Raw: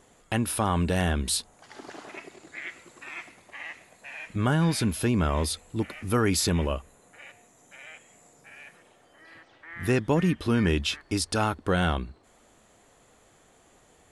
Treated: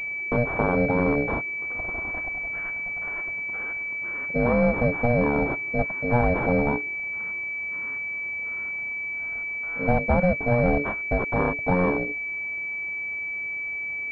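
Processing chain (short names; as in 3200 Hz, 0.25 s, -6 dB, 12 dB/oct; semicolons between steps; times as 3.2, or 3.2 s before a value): block floating point 5-bit; in parallel at +1.5 dB: compressor, threshold -33 dBFS, peak gain reduction 13.5 dB; on the sum: ring modulator 360 Hz; pulse-width modulation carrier 2300 Hz; gain +3.5 dB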